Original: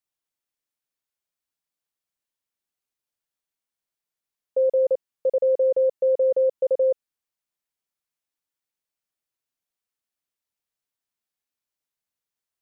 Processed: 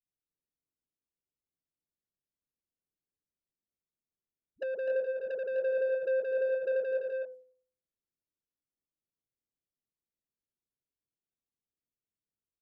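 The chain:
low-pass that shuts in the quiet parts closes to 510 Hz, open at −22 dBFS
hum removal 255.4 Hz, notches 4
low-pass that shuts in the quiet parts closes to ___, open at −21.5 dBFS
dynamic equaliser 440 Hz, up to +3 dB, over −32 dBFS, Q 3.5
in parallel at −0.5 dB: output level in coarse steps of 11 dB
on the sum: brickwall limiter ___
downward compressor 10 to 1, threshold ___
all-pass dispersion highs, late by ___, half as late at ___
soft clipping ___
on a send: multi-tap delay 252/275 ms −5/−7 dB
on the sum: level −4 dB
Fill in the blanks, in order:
520 Hz, −17 dBFS, −22 dBFS, 77 ms, 380 Hz, −27.5 dBFS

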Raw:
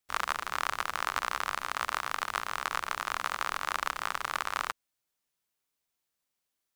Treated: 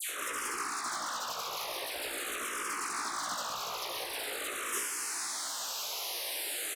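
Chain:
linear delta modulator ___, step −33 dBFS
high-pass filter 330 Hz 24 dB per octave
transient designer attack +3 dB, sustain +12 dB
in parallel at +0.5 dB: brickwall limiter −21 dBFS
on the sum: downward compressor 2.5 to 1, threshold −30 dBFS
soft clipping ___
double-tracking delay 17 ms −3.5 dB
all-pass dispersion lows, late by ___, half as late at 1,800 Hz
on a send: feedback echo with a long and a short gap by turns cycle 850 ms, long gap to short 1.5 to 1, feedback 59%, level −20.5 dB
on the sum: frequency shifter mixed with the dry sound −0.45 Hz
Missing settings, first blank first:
64 kbit/s, −26 dBFS, 90 ms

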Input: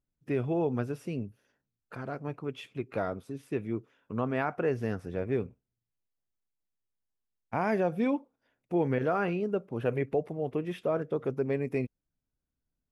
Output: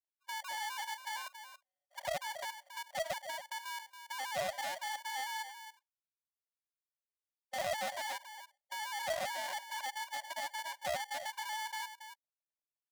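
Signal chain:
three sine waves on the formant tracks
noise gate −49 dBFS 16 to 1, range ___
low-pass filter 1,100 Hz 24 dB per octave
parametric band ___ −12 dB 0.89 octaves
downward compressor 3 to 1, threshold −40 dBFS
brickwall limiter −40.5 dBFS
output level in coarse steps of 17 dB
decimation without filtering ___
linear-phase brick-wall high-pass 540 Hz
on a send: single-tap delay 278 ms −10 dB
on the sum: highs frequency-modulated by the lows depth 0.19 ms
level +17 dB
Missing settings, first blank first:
−9 dB, 850 Hz, 34×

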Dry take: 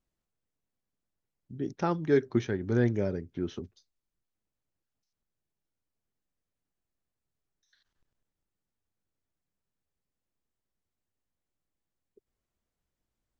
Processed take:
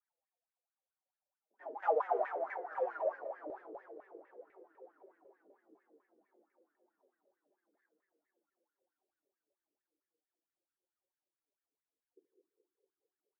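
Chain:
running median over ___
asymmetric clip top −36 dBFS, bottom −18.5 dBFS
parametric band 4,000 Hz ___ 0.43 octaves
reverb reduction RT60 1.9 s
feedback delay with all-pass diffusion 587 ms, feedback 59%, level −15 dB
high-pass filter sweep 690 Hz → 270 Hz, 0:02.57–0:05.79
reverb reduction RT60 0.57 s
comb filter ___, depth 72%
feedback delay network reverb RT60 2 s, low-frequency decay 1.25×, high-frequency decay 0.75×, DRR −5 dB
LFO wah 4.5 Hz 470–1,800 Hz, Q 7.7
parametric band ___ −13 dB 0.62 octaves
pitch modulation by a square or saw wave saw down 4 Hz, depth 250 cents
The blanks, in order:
15 samples, −7 dB, 5.6 ms, 130 Hz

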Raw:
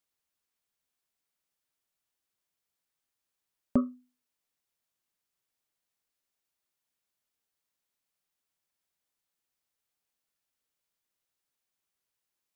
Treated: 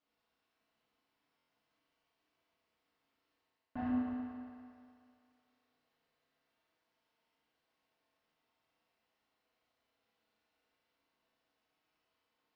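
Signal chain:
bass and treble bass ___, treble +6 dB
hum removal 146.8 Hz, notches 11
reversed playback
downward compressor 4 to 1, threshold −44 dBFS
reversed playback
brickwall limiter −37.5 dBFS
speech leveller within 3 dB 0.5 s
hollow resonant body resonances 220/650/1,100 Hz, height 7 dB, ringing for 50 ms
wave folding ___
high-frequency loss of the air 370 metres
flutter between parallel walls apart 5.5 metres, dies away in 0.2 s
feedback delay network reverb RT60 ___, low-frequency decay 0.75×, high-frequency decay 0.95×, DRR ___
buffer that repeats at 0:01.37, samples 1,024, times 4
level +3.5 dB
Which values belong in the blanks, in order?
−6 dB, −39.5 dBFS, 2.5 s, −8 dB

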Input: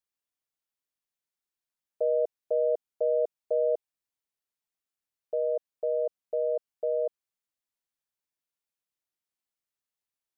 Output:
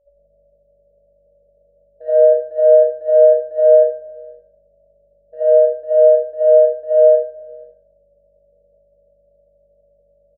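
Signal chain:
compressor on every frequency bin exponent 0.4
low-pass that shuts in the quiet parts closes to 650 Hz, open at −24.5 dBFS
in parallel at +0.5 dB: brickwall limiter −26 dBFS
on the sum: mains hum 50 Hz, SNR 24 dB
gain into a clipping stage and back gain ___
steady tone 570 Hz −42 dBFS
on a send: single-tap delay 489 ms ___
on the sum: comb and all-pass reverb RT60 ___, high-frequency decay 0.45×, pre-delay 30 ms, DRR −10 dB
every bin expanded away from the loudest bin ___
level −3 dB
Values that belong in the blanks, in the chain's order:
19 dB, −17.5 dB, 0.92 s, 1.5 to 1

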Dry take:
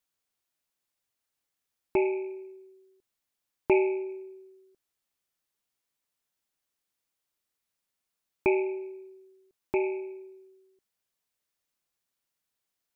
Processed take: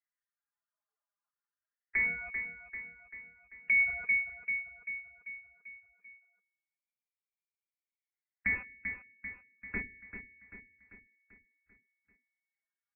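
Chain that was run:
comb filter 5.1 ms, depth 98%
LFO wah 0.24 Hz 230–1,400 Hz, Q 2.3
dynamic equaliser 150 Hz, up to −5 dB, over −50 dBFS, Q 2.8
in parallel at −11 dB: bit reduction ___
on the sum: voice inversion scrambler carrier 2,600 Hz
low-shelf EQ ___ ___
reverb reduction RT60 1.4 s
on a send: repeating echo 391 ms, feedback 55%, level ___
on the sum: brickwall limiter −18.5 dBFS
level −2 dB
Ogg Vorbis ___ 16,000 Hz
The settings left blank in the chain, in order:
5 bits, 360 Hz, +9.5 dB, −10 dB, 48 kbit/s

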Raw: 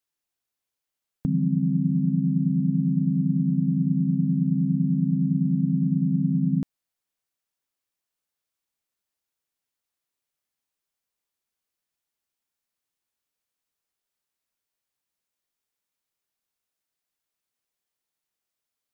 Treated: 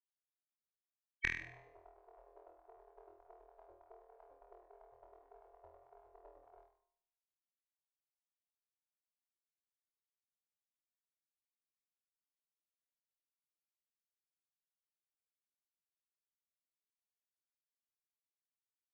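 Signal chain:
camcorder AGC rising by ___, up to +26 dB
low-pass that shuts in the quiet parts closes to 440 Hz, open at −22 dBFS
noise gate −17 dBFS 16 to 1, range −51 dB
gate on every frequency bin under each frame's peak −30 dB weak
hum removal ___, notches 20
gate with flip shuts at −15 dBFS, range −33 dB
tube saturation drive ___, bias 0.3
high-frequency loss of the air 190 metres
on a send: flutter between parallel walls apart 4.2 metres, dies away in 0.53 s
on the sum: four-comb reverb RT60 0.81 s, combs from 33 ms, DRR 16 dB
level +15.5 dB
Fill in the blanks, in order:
37 dB per second, 62.52 Hz, 37 dB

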